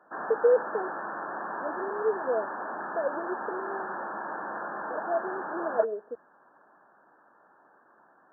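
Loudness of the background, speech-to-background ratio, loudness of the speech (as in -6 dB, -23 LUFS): -35.5 LUFS, 4.5 dB, -31.0 LUFS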